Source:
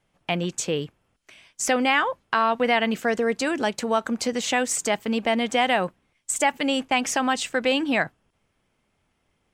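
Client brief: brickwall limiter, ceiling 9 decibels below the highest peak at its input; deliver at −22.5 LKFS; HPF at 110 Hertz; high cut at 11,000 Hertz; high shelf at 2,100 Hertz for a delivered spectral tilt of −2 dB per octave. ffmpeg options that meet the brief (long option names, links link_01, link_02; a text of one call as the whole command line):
ffmpeg -i in.wav -af "highpass=110,lowpass=11000,highshelf=frequency=2100:gain=6.5,volume=1.5dB,alimiter=limit=-11.5dB:level=0:latency=1" out.wav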